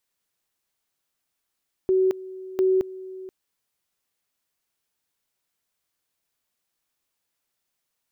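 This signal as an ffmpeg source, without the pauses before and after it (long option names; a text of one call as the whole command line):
ffmpeg -f lavfi -i "aevalsrc='pow(10,(-16.5-18*gte(mod(t,0.7),0.22))/20)*sin(2*PI*376*t)':duration=1.4:sample_rate=44100" out.wav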